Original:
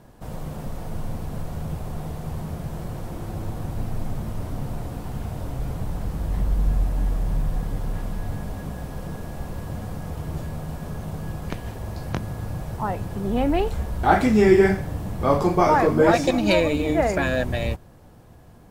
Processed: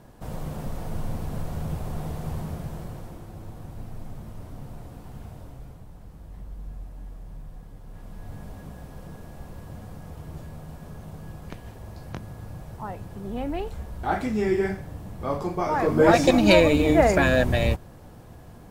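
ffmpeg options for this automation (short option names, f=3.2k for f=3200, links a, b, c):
-af "volume=19.5dB,afade=t=out:st=2.31:d=0.96:silence=0.334965,afade=t=out:st=5.26:d=0.58:silence=0.446684,afade=t=in:st=7.84:d=0.6:silence=0.375837,afade=t=in:st=15.7:d=0.61:silence=0.266073"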